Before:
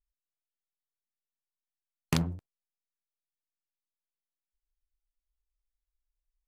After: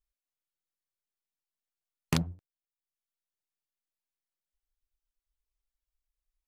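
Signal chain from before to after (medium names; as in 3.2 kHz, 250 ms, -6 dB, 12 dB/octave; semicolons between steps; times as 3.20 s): reverb removal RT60 0.68 s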